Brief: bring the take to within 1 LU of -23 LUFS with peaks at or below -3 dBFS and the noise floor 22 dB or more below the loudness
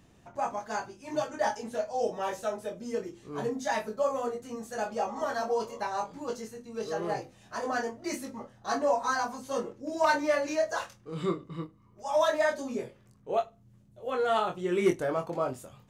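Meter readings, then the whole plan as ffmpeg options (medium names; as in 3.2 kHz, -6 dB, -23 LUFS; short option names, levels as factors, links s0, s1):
loudness -31.5 LUFS; peak level -16.0 dBFS; loudness target -23.0 LUFS
-> -af "volume=2.66"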